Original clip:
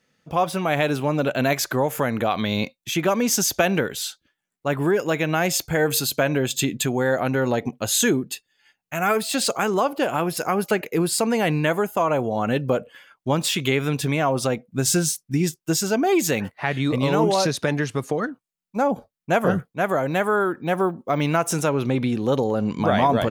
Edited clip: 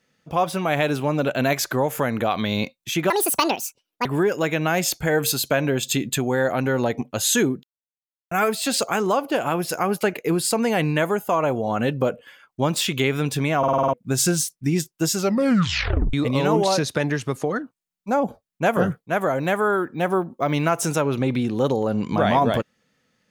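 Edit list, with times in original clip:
0:03.10–0:04.73: play speed 171%
0:08.31–0:08.99: silence
0:14.26: stutter in place 0.05 s, 7 plays
0:15.84: tape stop 0.97 s

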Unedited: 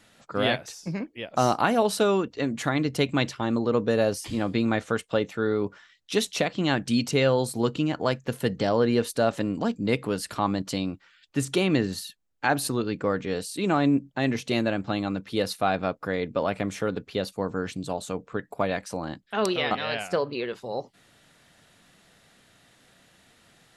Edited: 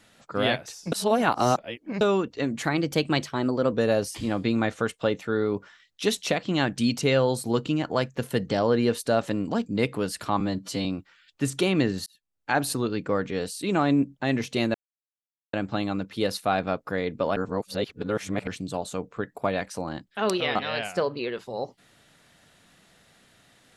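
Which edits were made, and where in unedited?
0:00.92–0:02.01: reverse
0:02.64–0:03.82: play speed 109%
0:10.50–0:10.80: time-stretch 1.5×
0:12.01–0:12.53: fade in linear
0:14.69: splice in silence 0.79 s
0:16.52–0:17.63: reverse

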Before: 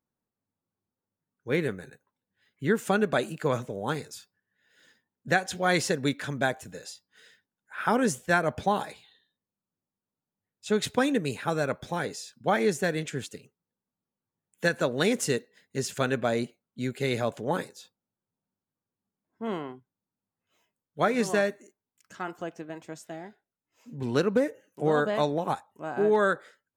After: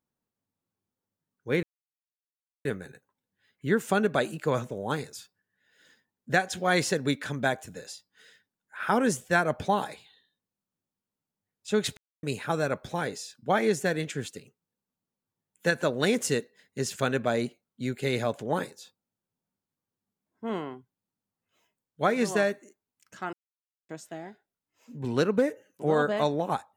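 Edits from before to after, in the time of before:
0:01.63: splice in silence 1.02 s
0:10.95–0:11.21: silence
0:22.31–0:22.87: silence

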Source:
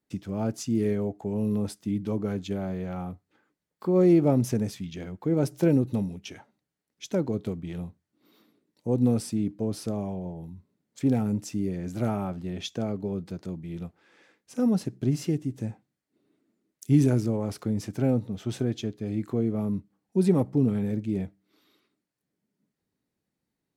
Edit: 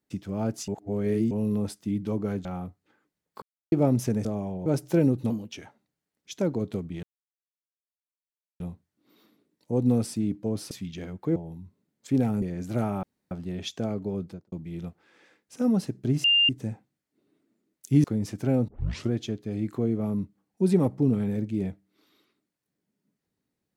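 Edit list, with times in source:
0:00.68–0:01.31: reverse
0:02.45–0:02.90: remove
0:03.87–0:04.17: silence
0:04.70–0:05.35: swap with 0:09.87–0:10.28
0:05.99–0:06.25: play speed 118%
0:07.76: splice in silence 1.57 s
0:11.34–0:11.68: remove
0:12.29: splice in room tone 0.28 s
0:13.20–0:13.50: fade out and dull
0:15.22–0:15.47: beep over 2,800 Hz −17 dBFS
0:17.02–0:17.59: remove
0:18.23: tape start 0.43 s

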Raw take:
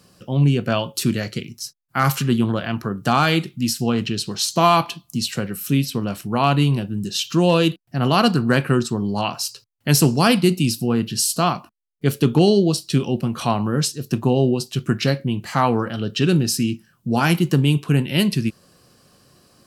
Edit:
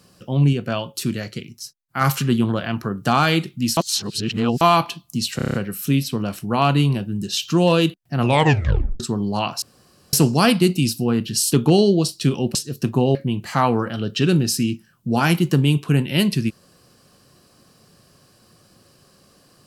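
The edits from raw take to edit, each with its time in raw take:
0:00.53–0:02.01: clip gain −3.5 dB
0:03.77–0:04.61: reverse
0:05.36: stutter 0.03 s, 7 plays
0:08.01: tape stop 0.81 s
0:09.44–0:09.95: fill with room tone
0:11.34–0:12.21: remove
0:13.24–0:13.84: remove
0:14.44–0:15.15: remove

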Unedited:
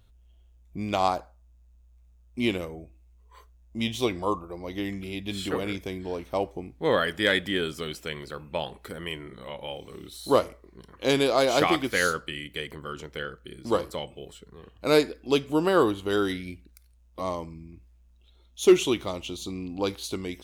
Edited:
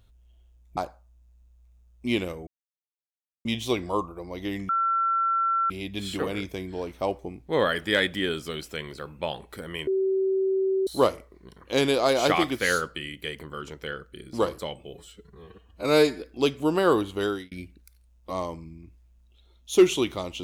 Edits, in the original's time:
0:00.77–0:01.10: remove
0:02.80–0:03.78: silence
0:05.02: insert tone 1,350 Hz −21 dBFS 1.01 s
0:09.19–0:10.19: beep over 383 Hz −21 dBFS
0:14.26–0:15.11: time-stretch 1.5×
0:16.10–0:16.41: fade out

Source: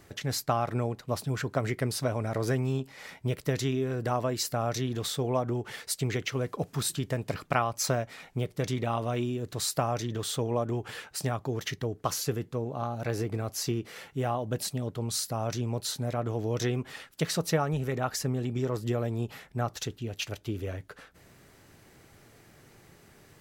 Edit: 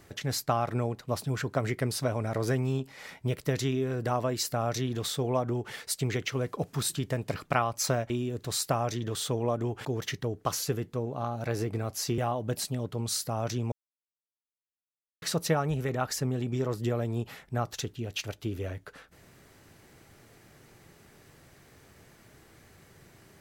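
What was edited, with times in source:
0:08.10–0:09.18: remove
0:10.93–0:11.44: remove
0:13.77–0:14.21: remove
0:15.75–0:17.25: silence

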